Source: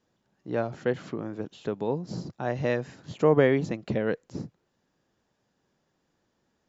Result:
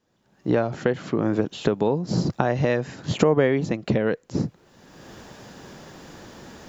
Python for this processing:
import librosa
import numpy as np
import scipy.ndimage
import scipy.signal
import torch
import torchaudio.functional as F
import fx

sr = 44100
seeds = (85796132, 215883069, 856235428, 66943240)

y = fx.recorder_agc(x, sr, target_db=-12.5, rise_db_per_s=28.0, max_gain_db=30)
y = y * 10.0 ** (1.0 / 20.0)